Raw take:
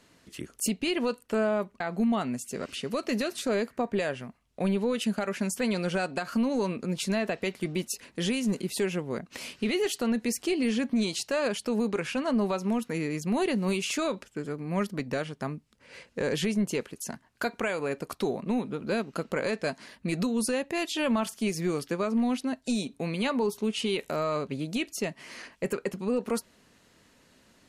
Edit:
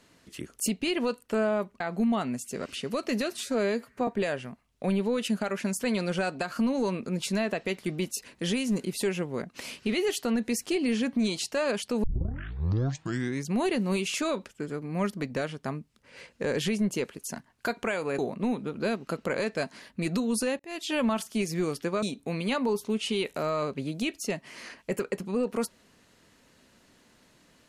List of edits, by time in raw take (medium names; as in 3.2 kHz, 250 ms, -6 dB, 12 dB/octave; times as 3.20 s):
3.37–3.84 s: stretch 1.5×
11.80 s: tape start 1.49 s
17.95–18.25 s: delete
20.66–20.98 s: fade in
22.09–22.76 s: delete